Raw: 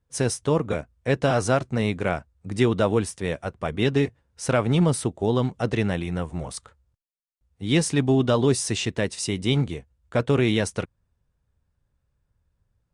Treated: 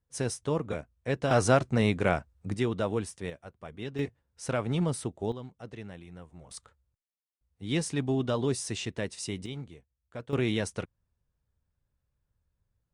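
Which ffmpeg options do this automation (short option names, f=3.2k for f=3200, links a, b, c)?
-af "asetnsamples=n=441:p=0,asendcmd='1.31 volume volume -1dB;2.54 volume volume -8.5dB;3.3 volume volume -16dB;3.99 volume volume -8.5dB;5.32 volume volume -19dB;6.51 volume volume -8.5dB;9.46 volume volume -17.5dB;10.33 volume volume -7dB',volume=-7.5dB"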